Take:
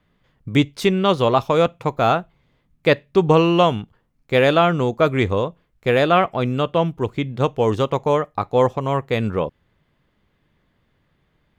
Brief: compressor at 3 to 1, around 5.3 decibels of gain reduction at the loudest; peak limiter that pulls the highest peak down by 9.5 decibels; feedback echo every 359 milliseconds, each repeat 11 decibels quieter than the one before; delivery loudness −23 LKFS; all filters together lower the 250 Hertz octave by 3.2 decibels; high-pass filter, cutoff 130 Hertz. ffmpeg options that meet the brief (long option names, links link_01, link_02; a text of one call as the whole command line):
ffmpeg -i in.wav -af "highpass=130,equalizer=frequency=250:width_type=o:gain=-4,acompressor=threshold=-18dB:ratio=3,alimiter=limit=-16.5dB:level=0:latency=1,aecho=1:1:359|718|1077:0.282|0.0789|0.0221,volume=5dB" out.wav